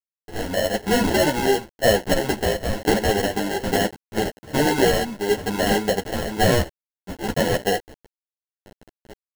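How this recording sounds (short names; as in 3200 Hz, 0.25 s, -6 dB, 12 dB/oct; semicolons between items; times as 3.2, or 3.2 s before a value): a quantiser's noise floor 6-bit, dither none; tremolo saw down 1.1 Hz, depth 60%; aliases and images of a low sample rate 1200 Hz, jitter 0%; a shimmering, thickened sound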